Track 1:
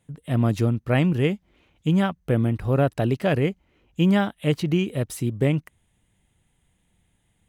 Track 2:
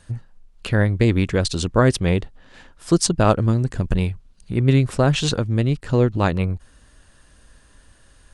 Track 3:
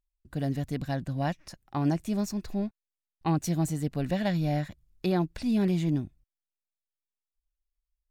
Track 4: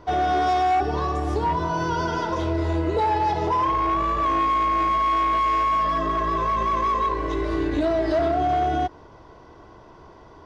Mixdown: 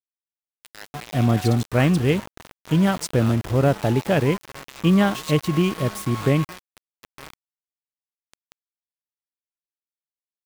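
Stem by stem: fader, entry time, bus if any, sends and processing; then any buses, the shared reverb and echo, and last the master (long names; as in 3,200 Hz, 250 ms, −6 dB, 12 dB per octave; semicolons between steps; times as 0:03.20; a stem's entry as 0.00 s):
+2.0 dB, 0.85 s, no send, echo send −21 dB, no processing
−9.0 dB, 0.00 s, no send, no echo send, high-pass filter 1,400 Hz 12 dB per octave; centre clipping without the shift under −29 dBFS
−18.5 dB, 0.45 s, no send, echo send −22 dB, high-shelf EQ 4,400 Hz +8.5 dB; power curve on the samples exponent 0.7; automatic ducking −10 dB, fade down 1.80 s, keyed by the second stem
−14.5 dB, 0.75 s, no send, no echo send, parametric band 3,200 Hz +7.5 dB 0.37 octaves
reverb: not used
echo: single-tap delay 913 ms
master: centre clipping without the shift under −28.5 dBFS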